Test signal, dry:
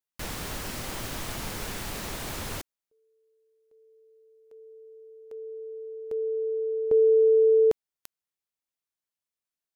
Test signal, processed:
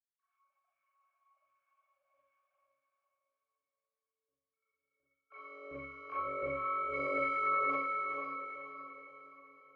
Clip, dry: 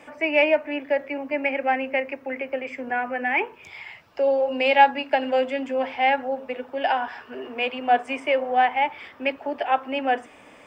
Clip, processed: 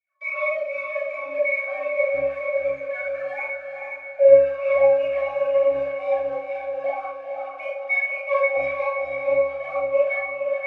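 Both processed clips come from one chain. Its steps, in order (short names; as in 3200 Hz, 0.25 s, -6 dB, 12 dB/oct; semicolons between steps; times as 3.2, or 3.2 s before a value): sine-wave speech; HPF 230 Hz 12 dB/oct; sample leveller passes 5; in parallel at -0.5 dB: compressor, threshold -20 dBFS; on the sum: LFO high-pass saw down 1.4 Hz 620–2000 Hz; limiter -1.5 dBFS; octave resonator C#, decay 0.52 s; on a send: diffused feedback echo 0.464 s, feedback 46%, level -4 dB; on the sum: Schroeder reverb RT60 0.39 s, combs from 29 ms, DRR -6.5 dB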